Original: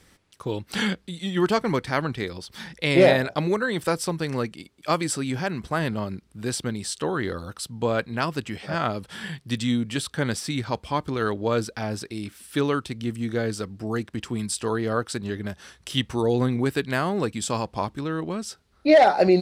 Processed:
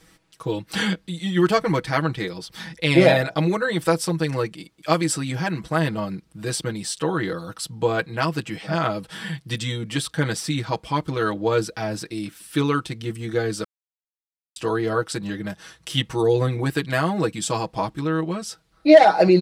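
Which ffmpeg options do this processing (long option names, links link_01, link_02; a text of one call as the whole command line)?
ffmpeg -i in.wav -filter_complex "[0:a]asplit=3[link_01][link_02][link_03];[link_01]atrim=end=13.64,asetpts=PTS-STARTPTS,afade=type=out:start_time=13.636:duration=0.004:curve=hsin[link_04];[link_02]atrim=start=13.64:end=14.56,asetpts=PTS-STARTPTS,volume=0[link_05];[link_03]atrim=start=14.56,asetpts=PTS-STARTPTS,afade=type=in:duration=0.004:curve=hsin[link_06];[link_04][link_05][link_06]concat=n=3:v=0:a=1,aecho=1:1:6.2:0.9" out.wav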